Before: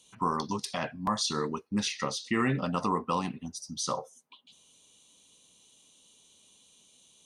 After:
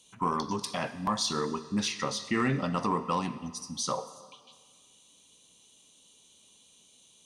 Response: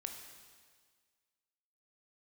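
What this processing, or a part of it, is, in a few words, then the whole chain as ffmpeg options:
saturated reverb return: -filter_complex "[0:a]asplit=2[s0][s1];[1:a]atrim=start_sample=2205[s2];[s1][s2]afir=irnorm=-1:irlink=0,asoftclip=type=tanh:threshold=0.0562,volume=0.944[s3];[s0][s3]amix=inputs=2:normalize=0,volume=0.668"

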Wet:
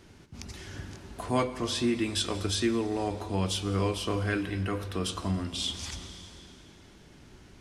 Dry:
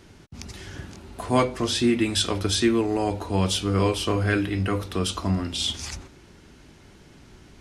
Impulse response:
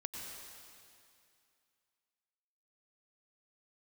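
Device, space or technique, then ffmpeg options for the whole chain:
compressed reverb return: -filter_complex "[0:a]asplit=2[s0][s1];[1:a]atrim=start_sample=2205[s2];[s1][s2]afir=irnorm=-1:irlink=0,acompressor=threshold=0.0282:ratio=4,volume=0.944[s3];[s0][s3]amix=inputs=2:normalize=0,volume=0.398"

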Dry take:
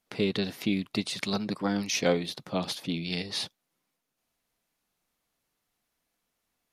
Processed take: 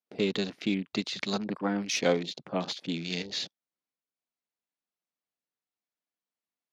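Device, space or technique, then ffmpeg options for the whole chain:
over-cleaned archive recording: -af "highpass=170,lowpass=7300,afwtdn=0.00794"

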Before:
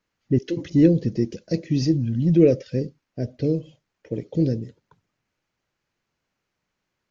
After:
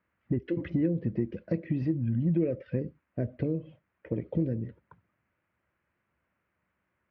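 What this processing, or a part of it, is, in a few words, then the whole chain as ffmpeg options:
bass amplifier: -af "acompressor=threshold=0.0447:ratio=4,highpass=65,equalizer=f=67:t=q:w=4:g=7,equalizer=f=140:t=q:w=4:g=-5,equalizer=f=270:t=q:w=4:g=-4,equalizer=f=430:t=q:w=4:g=-6,equalizer=f=800:t=q:w=4:g=-5,lowpass=f=2200:w=0.5412,lowpass=f=2200:w=1.3066,volume=1.5"

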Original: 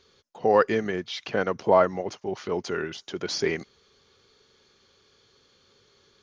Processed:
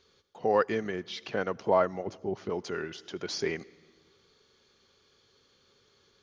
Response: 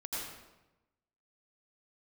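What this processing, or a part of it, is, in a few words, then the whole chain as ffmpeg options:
ducked reverb: -filter_complex "[0:a]asplit=3[s0][s1][s2];[1:a]atrim=start_sample=2205[s3];[s1][s3]afir=irnorm=-1:irlink=0[s4];[s2]apad=whole_len=274473[s5];[s4][s5]sidechaincompress=threshold=0.0112:ratio=5:attack=45:release=609,volume=0.282[s6];[s0][s6]amix=inputs=2:normalize=0,asettb=1/sr,asplit=3[s7][s8][s9];[s7]atrim=end=2.074[s10];[s8]atrim=start=2.07:end=2.5,asetpts=PTS-STARTPTS,afade=t=in:d=0.004:c=qsin,afade=t=out:st=0.426:d=0.004:c=qsin,tiltshelf=f=750:g=6[s11];[s9]atrim=start=2.496[s12];[s10][s11]acrossfade=d=0.004:c1=hsin:c2=qsin[s13];[s13][s12]acrossfade=d=0.004:c1=qsin:c2=hsin,volume=0.531"

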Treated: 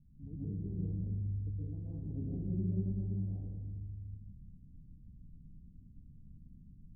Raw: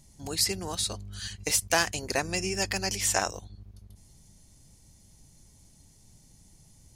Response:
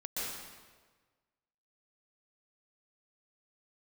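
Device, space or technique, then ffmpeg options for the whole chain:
club heard from the street: -filter_complex "[0:a]alimiter=limit=0.15:level=0:latency=1:release=258,lowpass=f=240:w=0.5412,lowpass=f=240:w=1.3066[s0];[1:a]atrim=start_sample=2205[s1];[s0][s1]afir=irnorm=-1:irlink=0,volume=1.12"

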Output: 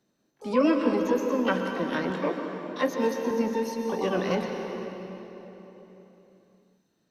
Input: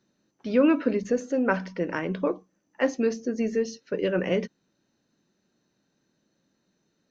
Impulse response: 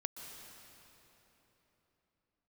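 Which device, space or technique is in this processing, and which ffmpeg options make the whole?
shimmer-style reverb: -filter_complex "[0:a]asplit=2[s0][s1];[s1]asetrate=88200,aresample=44100,atempo=0.5,volume=0.398[s2];[s0][s2]amix=inputs=2:normalize=0[s3];[1:a]atrim=start_sample=2205[s4];[s3][s4]afir=irnorm=-1:irlink=0,asettb=1/sr,asplit=3[s5][s6][s7];[s5]atrim=end=2.104[s8];[s6]atrim=start=2.1:end=3.31,asetpts=PTS-STARTPTS,afade=t=in:d=0.004:c=qsin,afade=t=out:st=1.206:d=0.004:c=qsin,highpass=130[s9];[s7]atrim=start=3.306[s10];[s8][s9]acrossfade=d=0.004:c1=hsin:c2=qsin[s11];[s11][s10]acrossfade=d=0.004:c1=qsin:c2=hsin"

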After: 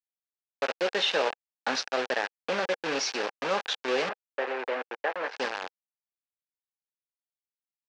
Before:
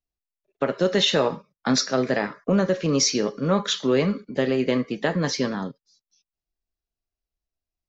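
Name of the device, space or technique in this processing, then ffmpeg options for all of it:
hand-held game console: -filter_complex "[0:a]acrusher=bits=3:mix=0:aa=0.000001,highpass=440,equalizer=f=490:t=q:w=4:g=4,equalizer=f=810:t=q:w=4:g=6,equalizer=f=1600:t=q:w=4:g=6,equalizer=f=2600:t=q:w=4:g=5,lowpass=f=5400:w=0.5412,lowpass=f=5400:w=1.3066,asettb=1/sr,asplit=3[s0][s1][s2];[s0]atrim=end=4.094[s3];[s1]atrim=start=4.09:end=5.36,asetpts=PTS-STARTPTS,afade=t=in:d=0.004:c=qsin,afade=t=out:st=1.266:d=0.004:c=qsin,acrossover=split=310 2400:gain=0.1 1 0.141[s4][s5][s6];[s4][s5][s6]amix=inputs=3:normalize=0[s7];[s2]atrim=start=5.356[s8];[s3][s7]acrossfade=d=0.004:c1=hsin:c2=qsin[s9];[s9][s8]acrossfade=d=0.004:c1=qsin:c2=hsin,volume=0.447"

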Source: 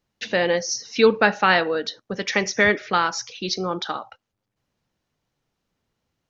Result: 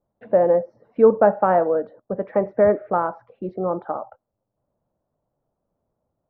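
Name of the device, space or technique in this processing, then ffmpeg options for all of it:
under water: -af "lowpass=f=1100:w=0.5412,lowpass=f=1100:w=1.3066,equalizer=f=610:t=o:w=0.48:g=10"

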